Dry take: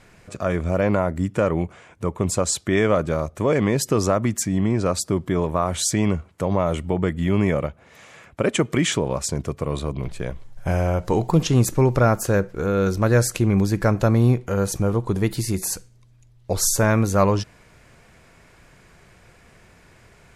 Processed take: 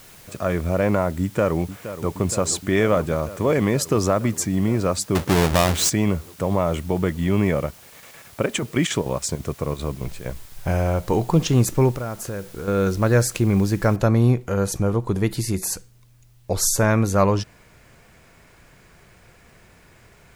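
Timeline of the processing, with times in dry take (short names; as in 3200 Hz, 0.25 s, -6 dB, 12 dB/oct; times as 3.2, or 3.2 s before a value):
1.21–2.14 echo throw 0.47 s, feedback 85%, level -12.5 dB
5.15–5.9 half-waves squared off
7.64–10.7 chopper 11 Hz -> 3.3 Hz, depth 65%, duty 75%
11.91–12.68 compressor 2.5:1, threshold -30 dBFS
13.96 noise floor step -48 dB -66 dB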